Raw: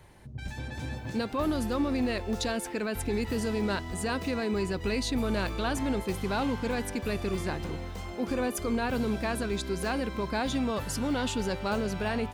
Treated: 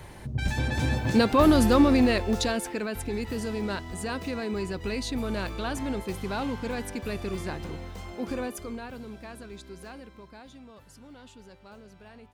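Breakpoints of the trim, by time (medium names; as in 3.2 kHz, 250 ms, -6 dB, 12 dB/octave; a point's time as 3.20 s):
1.77 s +10 dB
3.04 s -1.5 dB
8.34 s -1.5 dB
8.99 s -12 dB
9.79 s -12 dB
10.55 s -19.5 dB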